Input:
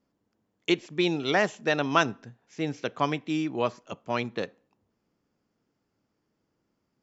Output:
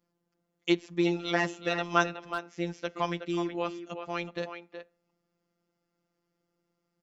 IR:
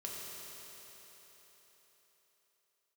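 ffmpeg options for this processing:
-filter_complex "[0:a]afftfilt=real='hypot(re,im)*cos(PI*b)':imag='0':win_size=1024:overlap=0.75,asplit=2[a][b];[b]adelay=370,highpass=300,lowpass=3.4k,asoftclip=type=hard:threshold=-15dB,volume=-8dB[c];[a][c]amix=inputs=2:normalize=0"

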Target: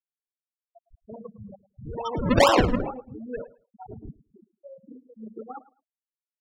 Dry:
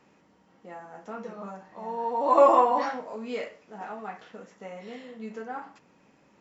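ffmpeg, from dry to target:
-af "acrusher=samples=40:mix=1:aa=0.000001:lfo=1:lforange=40:lforate=2.3,afftfilt=real='re*gte(hypot(re,im),0.0631)':imag='im*gte(hypot(re,im),0.0631)':win_size=1024:overlap=0.75,aecho=1:1:108|216:0.112|0.0236"

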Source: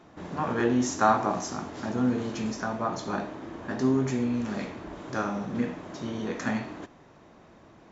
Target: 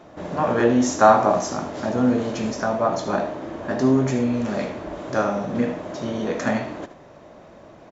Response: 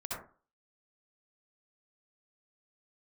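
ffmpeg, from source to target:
-filter_complex "[0:a]equalizer=f=590:t=o:w=0.51:g=9,asplit=2[a][b];[b]aecho=0:1:76:0.224[c];[a][c]amix=inputs=2:normalize=0,volume=5dB"

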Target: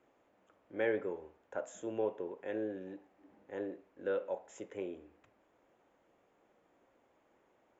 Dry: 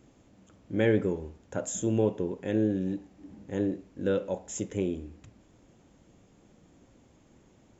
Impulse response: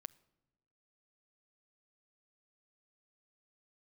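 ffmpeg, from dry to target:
-filter_complex "[0:a]acrossover=split=410 2500:gain=0.0794 1 0.141[a][b][c];[a][b][c]amix=inputs=3:normalize=0,volume=-3dB"

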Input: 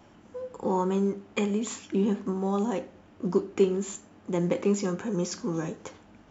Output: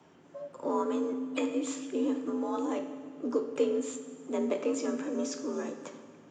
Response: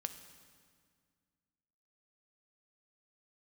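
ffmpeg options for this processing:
-filter_complex "[0:a]afreqshift=64,asplit=2[a][b];[b]asetrate=52444,aresample=44100,atempo=0.840896,volume=-16dB[c];[a][c]amix=inputs=2:normalize=0[d];[1:a]atrim=start_sample=2205[e];[d][e]afir=irnorm=-1:irlink=0,volume=-2.5dB"

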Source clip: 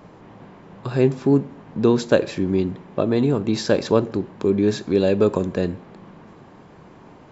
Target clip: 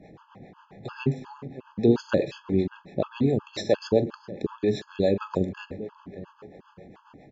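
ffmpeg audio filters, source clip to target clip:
-filter_complex "[0:a]lowpass=3.6k,aemphasis=mode=production:type=50kf,asplit=2[a][b];[b]adelay=43,volume=-13.5dB[c];[a][c]amix=inputs=2:normalize=0,asplit=2[d][e];[e]adelay=590,lowpass=f=2.3k:p=1,volume=-16dB,asplit=2[f][g];[g]adelay=590,lowpass=f=2.3k:p=1,volume=0.35,asplit=2[h][i];[i]adelay=590,lowpass=f=2.3k:p=1,volume=0.35[j];[f][h][j]amix=inputs=3:normalize=0[k];[d][k]amix=inputs=2:normalize=0,acrossover=split=400[l][m];[l]aeval=exprs='val(0)*(1-0.7/2+0.7/2*cos(2*PI*7.4*n/s))':c=same[n];[m]aeval=exprs='val(0)*(1-0.7/2-0.7/2*cos(2*PI*7.4*n/s))':c=same[o];[n][o]amix=inputs=2:normalize=0,afftfilt=real='re*gt(sin(2*PI*2.8*pts/sr)*(1-2*mod(floor(b*sr/1024/860),2)),0)':imag='im*gt(sin(2*PI*2.8*pts/sr)*(1-2*mod(floor(b*sr/1024/860),2)),0)':win_size=1024:overlap=0.75"

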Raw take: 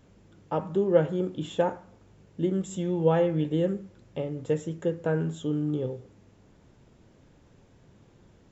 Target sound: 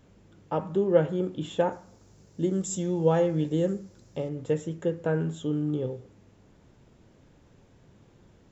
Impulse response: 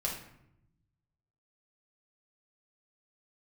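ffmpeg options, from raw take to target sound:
-filter_complex "[0:a]asettb=1/sr,asplit=3[a][b][c];[a]atrim=end=1.724[d];[b]atrim=start=1.72:end=4.29,asetpts=PTS-STARTPTS,afade=t=in:d=0.004:c=qsin,afade=t=out:st=2.566:d=0.004:c=qsin,highshelf=f=4k:t=q:w=1.5:g=8[e];[c]atrim=start=4.286[f];[d][e]acrossfade=d=0.004:c1=hsin:c2=qsin[g];[g][f]acrossfade=d=0.004:c1=qsin:c2=hsin"

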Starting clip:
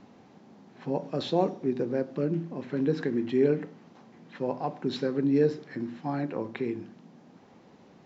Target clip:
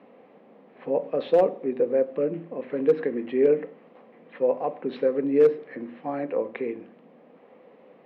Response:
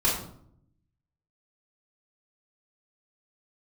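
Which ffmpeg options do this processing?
-af "highpass=330,equalizer=f=350:t=q:w=4:g=-5,equalizer=f=500:t=q:w=4:g=9,equalizer=f=880:t=q:w=4:g=-6,equalizer=f=1.5k:t=q:w=4:g=-7,lowpass=f=2.6k:w=0.5412,lowpass=f=2.6k:w=1.3066,asoftclip=type=hard:threshold=-15.5dB,volume=4.5dB"

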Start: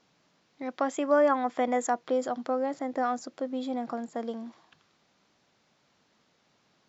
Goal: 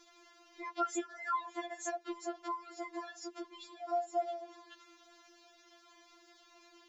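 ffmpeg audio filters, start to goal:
-af "acompressor=threshold=-57dB:ratio=1.5,afftfilt=real='re*4*eq(mod(b,16),0)':imag='im*4*eq(mod(b,16),0)':win_size=2048:overlap=0.75,volume=10dB"

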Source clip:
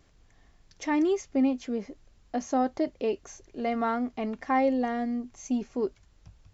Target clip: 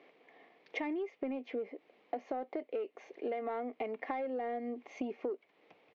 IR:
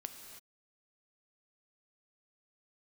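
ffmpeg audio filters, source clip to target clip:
-filter_complex "[0:a]highpass=f=270:w=0.5412,highpass=f=270:w=1.3066,equalizer=f=470:t=q:w=4:g=9,equalizer=f=720:t=q:w=4:g=5,equalizer=f=1.5k:t=q:w=4:g=-7,equalizer=f=2.2k:t=q:w=4:g=8,lowpass=f=3.2k:w=0.5412,lowpass=f=3.2k:w=1.3066,asplit=2[a][b];[b]alimiter=limit=-19.5dB:level=0:latency=1:release=11,volume=-1dB[c];[a][c]amix=inputs=2:normalize=0,asoftclip=type=tanh:threshold=-10dB,acompressor=threshold=-33dB:ratio=12,atempo=1.1,volume=-1.5dB"

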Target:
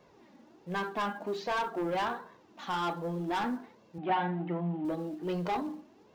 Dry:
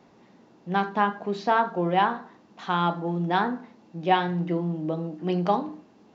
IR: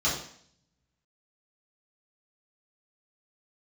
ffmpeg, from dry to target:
-filter_complex "[0:a]flanger=delay=1.8:depth=1.8:regen=9:speed=1.3:shape=sinusoidal,asplit=2[a][b];[b]acrusher=bits=3:mode=log:mix=0:aa=0.000001,volume=-10.5dB[c];[a][c]amix=inputs=2:normalize=0,asoftclip=type=tanh:threshold=-25dB,asettb=1/sr,asplit=3[d][e][f];[d]atrim=end=3.984[g];[e]atrim=start=3.98:end=4.85,asetpts=PTS-STARTPTS,afade=t=in:d=0.004:c=qsin,afade=t=out:st=0.866:d=0.004:c=qsin,highpass=160,equalizer=f=190:t=q:w=4:g=9,equalizer=f=480:t=q:w=4:g=-7,equalizer=f=740:t=q:w=4:g=9,lowpass=f=3k:w=0.5412,lowpass=f=3k:w=1.3066[h];[f]atrim=start=4.846[i];[g][h]acrossfade=d=0.004:c1=hsin:c2=qsin[j];[j][i]acrossfade=d=0.004:c1=qsin:c2=hsin,volume=-2dB"

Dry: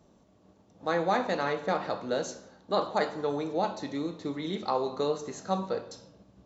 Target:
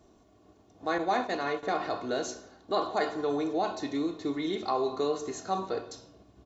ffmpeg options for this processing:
-filter_complex "[0:a]asettb=1/sr,asplit=3[a][b][c];[a]atrim=end=0.984[d];[b]atrim=start=0.98:end=1.63,asetpts=PTS-STARTPTS,afade=t=in:d=0.004:c=qsin,afade=t=out:st=0.646:d=0.004:c=qsin,agate=range=-33dB:threshold=-26dB:ratio=3:detection=peak[e];[c]atrim=start=1.626[f];[d][e]acrossfade=d=0.004:c1=hsin:c2=qsin[g];[g][f]acrossfade=d=0.004:c1=qsin:c2=hsin,aecho=1:1:2.8:0.58,asplit=2[h][i];[i]alimiter=limit=-24dB:level=0:latency=1:release=36,volume=-1.5dB[j];[h][j]amix=inputs=2:normalize=0,volume=-4.5dB"

